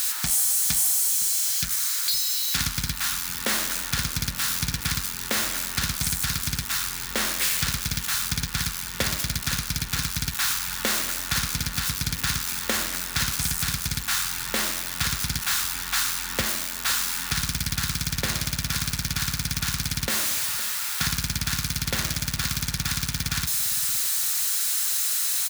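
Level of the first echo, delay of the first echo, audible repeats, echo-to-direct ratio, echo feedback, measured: -17.0 dB, 0.512 s, 2, -17.0 dB, 25%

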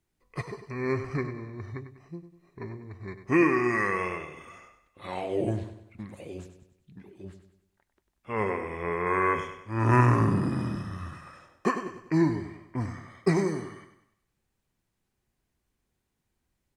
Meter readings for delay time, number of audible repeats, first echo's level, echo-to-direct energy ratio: 98 ms, 4, -10.5 dB, -9.5 dB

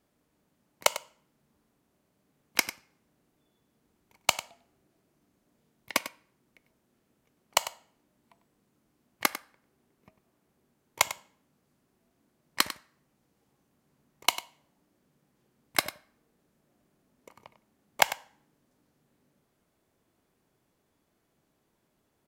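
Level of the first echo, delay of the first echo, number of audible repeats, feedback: -13.5 dB, 98 ms, 1, no steady repeat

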